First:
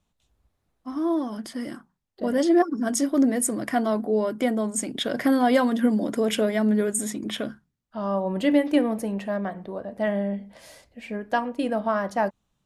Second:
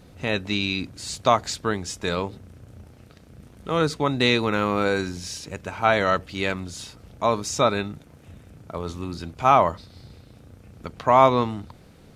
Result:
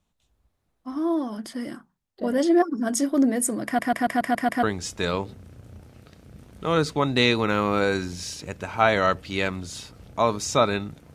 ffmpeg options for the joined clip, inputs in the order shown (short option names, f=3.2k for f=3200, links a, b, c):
-filter_complex "[0:a]apad=whole_dur=11.14,atrim=end=11.14,asplit=7[a][b][c][d][e][f][g];[a]atrim=end=3.792[h];[b]atrim=start=3.648:end=3.792[i];[c]atrim=start=3.648:end=3.792[j];[d]atrim=start=3.648:end=3.792[k];[e]atrim=start=3.648:end=3.792[l];[f]atrim=start=3.648:end=3.792[m];[g]atrim=start=3.648:end=3.792[n];[1:a]atrim=start=1.668:end=8.18[o];[h][i]acrossfade=d=0.004:c1=hsin:c2=hsin[p];[p][j]acrossfade=d=0.004:c1=hsin:c2=hsin[q];[q][k]acrossfade=d=0.004:c1=hsin:c2=hsin[r];[r][l]acrossfade=d=0.004:c1=hsin:c2=hsin[s];[s][m]acrossfade=d=0.004:c1=hsin:c2=hsin[t];[t][n]acrossfade=d=0.004:c1=hsin:c2=hsin[u];[u][o]acrossfade=d=0.004:c1=hsin:c2=hsin"